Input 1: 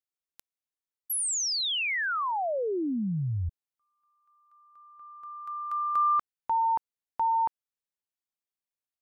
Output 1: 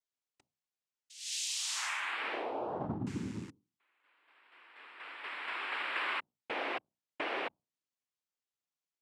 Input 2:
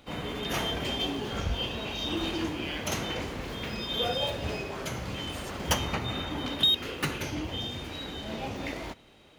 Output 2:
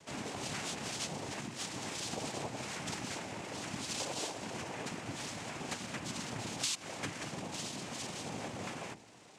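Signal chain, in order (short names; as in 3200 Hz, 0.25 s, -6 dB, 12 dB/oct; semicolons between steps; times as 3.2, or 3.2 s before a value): rattling part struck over -31 dBFS, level -28 dBFS; dynamic EQ 690 Hz, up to -3 dB, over -39 dBFS, Q 0.88; compressor 3:1, threshold -38 dBFS; notches 60/120/180/240/300/360 Hz; noise vocoder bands 4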